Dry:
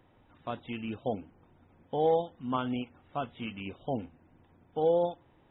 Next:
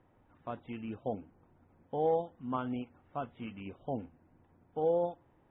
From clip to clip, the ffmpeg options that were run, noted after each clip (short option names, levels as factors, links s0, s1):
-af "lowpass=2000,volume=0.668"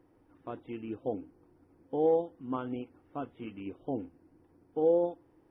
-af "superequalizer=6b=3.16:7b=2:14b=3.16:16b=2.82,volume=0.794"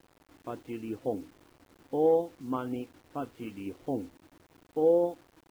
-af "acrusher=bits=9:mix=0:aa=0.000001,volume=1.26"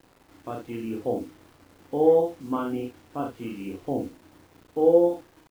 -af "aecho=1:1:35|67:0.631|0.501,volume=1.41"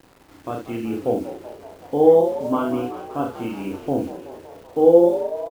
-filter_complex "[0:a]asplit=9[s0][s1][s2][s3][s4][s5][s6][s7][s8];[s1]adelay=189,afreqshift=59,volume=0.211[s9];[s2]adelay=378,afreqshift=118,volume=0.138[s10];[s3]adelay=567,afreqshift=177,volume=0.0891[s11];[s4]adelay=756,afreqshift=236,volume=0.0582[s12];[s5]adelay=945,afreqshift=295,volume=0.0376[s13];[s6]adelay=1134,afreqshift=354,volume=0.0245[s14];[s7]adelay=1323,afreqshift=413,volume=0.0158[s15];[s8]adelay=1512,afreqshift=472,volume=0.0104[s16];[s0][s9][s10][s11][s12][s13][s14][s15][s16]amix=inputs=9:normalize=0,volume=1.88"